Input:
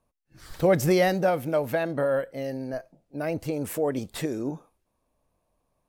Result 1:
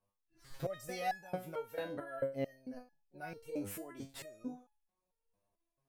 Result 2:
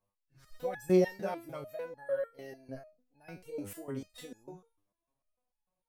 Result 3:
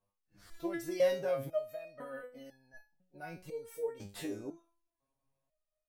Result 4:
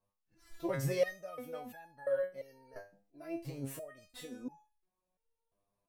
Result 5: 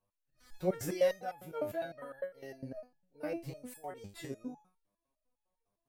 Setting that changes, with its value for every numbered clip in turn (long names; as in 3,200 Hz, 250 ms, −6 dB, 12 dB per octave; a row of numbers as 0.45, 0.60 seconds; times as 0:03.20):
step-sequenced resonator, speed: 4.5, 6.7, 2, 2.9, 9.9 Hertz